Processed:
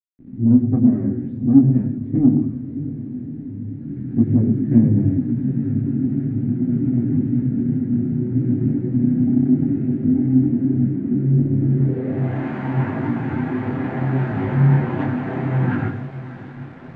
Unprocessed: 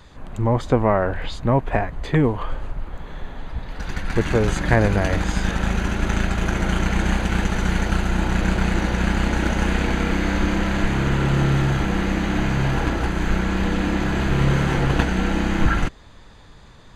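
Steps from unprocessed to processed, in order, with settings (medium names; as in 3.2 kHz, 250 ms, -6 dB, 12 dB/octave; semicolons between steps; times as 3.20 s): comb filter that takes the minimum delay 7.8 ms; high-pass 90 Hz 24 dB/octave; echo that smears into a reverb 646 ms, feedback 59%, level -15 dB; on a send at -8 dB: reverberation RT60 0.40 s, pre-delay 76 ms; on the sum: word length cut 6-bit, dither none; treble shelf 6.8 kHz -5 dB; low-pass sweep 270 Hz -> 880 Hz, 11.59–12.42 s; graphic EQ 125/250/500/1000/2000/4000/8000 Hz +4/+7/-6/-8/+10/+4/+11 dB; in parallel at -5.5 dB: saturation -6.5 dBFS, distortion -16 dB; on the sum: detune thickener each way 24 cents; trim -2.5 dB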